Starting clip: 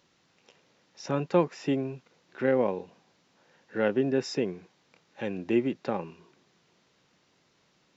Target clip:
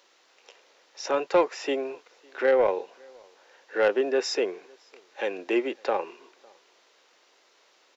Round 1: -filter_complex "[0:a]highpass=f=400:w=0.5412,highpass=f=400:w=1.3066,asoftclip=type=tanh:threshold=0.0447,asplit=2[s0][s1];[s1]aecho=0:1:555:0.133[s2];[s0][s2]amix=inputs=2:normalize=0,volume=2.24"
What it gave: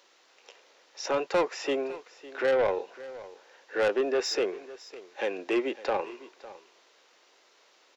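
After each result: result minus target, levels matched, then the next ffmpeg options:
echo-to-direct +11.5 dB; saturation: distortion +8 dB
-filter_complex "[0:a]highpass=f=400:w=0.5412,highpass=f=400:w=1.3066,asoftclip=type=tanh:threshold=0.0447,asplit=2[s0][s1];[s1]aecho=0:1:555:0.0355[s2];[s0][s2]amix=inputs=2:normalize=0,volume=2.24"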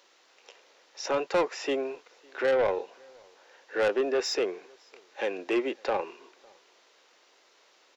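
saturation: distortion +8 dB
-filter_complex "[0:a]highpass=f=400:w=0.5412,highpass=f=400:w=1.3066,asoftclip=type=tanh:threshold=0.106,asplit=2[s0][s1];[s1]aecho=0:1:555:0.0355[s2];[s0][s2]amix=inputs=2:normalize=0,volume=2.24"

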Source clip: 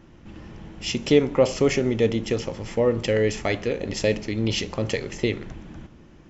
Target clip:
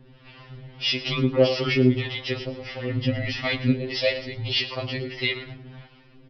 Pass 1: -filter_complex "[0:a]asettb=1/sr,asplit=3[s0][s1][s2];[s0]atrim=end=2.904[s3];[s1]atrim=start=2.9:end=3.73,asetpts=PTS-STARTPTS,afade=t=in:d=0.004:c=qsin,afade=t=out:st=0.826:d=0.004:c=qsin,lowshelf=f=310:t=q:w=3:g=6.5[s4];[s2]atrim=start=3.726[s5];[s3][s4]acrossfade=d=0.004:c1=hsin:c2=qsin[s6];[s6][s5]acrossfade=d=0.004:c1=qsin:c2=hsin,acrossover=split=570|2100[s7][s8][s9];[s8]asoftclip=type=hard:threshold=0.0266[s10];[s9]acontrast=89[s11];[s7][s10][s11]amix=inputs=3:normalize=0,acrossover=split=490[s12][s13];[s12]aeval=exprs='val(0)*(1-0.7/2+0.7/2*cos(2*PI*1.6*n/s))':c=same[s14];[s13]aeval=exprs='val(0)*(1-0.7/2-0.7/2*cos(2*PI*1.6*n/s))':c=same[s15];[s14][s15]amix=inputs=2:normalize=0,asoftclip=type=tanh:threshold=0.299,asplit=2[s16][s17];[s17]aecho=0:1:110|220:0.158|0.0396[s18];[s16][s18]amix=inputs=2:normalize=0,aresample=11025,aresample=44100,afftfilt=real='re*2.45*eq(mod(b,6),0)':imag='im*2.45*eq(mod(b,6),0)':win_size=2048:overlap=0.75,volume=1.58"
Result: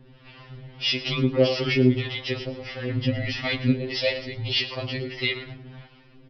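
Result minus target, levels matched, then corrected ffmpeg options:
hard clipper: distortion +9 dB
-filter_complex "[0:a]asettb=1/sr,asplit=3[s0][s1][s2];[s0]atrim=end=2.904[s3];[s1]atrim=start=2.9:end=3.73,asetpts=PTS-STARTPTS,afade=t=in:d=0.004:c=qsin,afade=t=out:st=0.826:d=0.004:c=qsin,lowshelf=f=310:t=q:w=3:g=6.5[s4];[s2]atrim=start=3.726[s5];[s3][s4]acrossfade=d=0.004:c1=hsin:c2=qsin[s6];[s6][s5]acrossfade=d=0.004:c1=qsin:c2=hsin,acrossover=split=570|2100[s7][s8][s9];[s8]asoftclip=type=hard:threshold=0.075[s10];[s9]acontrast=89[s11];[s7][s10][s11]amix=inputs=3:normalize=0,acrossover=split=490[s12][s13];[s12]aeval=exprs='val(0)*(1-0.7/2+0.7/2*cos(2*PI*1.6*n/s))':c=same[s14];[s13]aeval=exprs='val(0)*(1-0.7/2-0.7/2*cos(2*PI*1.6*n/s))':c=same[s15];[s14][s15]amix=inputs=2:normalize=0,asoftclip=type=tanh:threshold=0.299,asplit=2[s16][s17];[s17]aecho=0:1:110|220:0.158|0.0396[s18];[s16][s18]amix=inputs=2:normalize=0,aresample=11025,aresample=44100,afftfilt=real='re*2.45*eq(mod(b,6),0)':imag='im*2.45*eq(mod(b,6),0)':win_size=2048:overlap=0.75,volume=1.58"

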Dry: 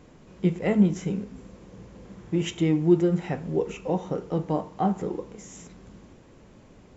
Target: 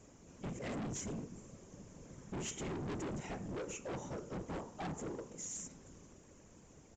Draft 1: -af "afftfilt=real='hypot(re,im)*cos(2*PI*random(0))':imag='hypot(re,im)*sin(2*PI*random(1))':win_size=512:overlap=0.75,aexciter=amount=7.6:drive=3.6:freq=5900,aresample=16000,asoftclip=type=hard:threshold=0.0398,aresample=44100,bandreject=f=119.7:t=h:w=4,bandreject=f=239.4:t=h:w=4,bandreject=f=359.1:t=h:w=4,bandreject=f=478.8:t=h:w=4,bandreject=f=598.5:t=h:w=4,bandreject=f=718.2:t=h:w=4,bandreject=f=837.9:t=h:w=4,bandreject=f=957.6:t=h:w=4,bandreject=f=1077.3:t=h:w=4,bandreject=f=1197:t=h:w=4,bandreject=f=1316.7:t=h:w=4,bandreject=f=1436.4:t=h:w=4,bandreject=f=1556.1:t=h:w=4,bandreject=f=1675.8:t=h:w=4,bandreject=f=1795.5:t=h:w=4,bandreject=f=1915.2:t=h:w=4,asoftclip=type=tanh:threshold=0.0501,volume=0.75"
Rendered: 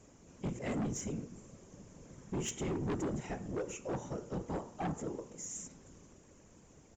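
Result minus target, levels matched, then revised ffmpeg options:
hard clipper: distortion -4 dB
-af "afftfilt=real='hypot(re,im)*cos(2*PI*random(0))':imag='hypot(re,im)*sin(2*PI*random(1))':win_size=512:overlap=0.75,aexciter=amount=7.6:drive=3.6:freq=5900,aresample=16000,asoftclip=type=hard:threshold=0.0158,aresample=44100,bandreject=f=119.7:t=h:w=4,bandreject=f=239.4:t=h:w=4,bandreject=f=359.1:t=h:w=4,bandreject=f=478.8:t=h:w=4,bandreject=f=598.5:t=h:w=4,bandreject=f=718.2:t=h:w=4,bandreject=f=837.9:t=h:w=4,bandreject=f=957.6:t=h:w=4,bandreject=f=1077.3:t=h:w=4,bandreject=f=1197:t=h:w=4,bandreject=f=1316.7:t=h:w=4,bandreject=f=1436.4:t=h:w=4,bandreject=f=1556.1:t=h:w=4,bandreject=f=1675.8:t=h:w=4,bandreject=f=1795.5:t=h:w=4,bandreject=f=1915.2:t=h:w=4,asoftclip=type=tanh:threshold=0.0501,volume=0.75"

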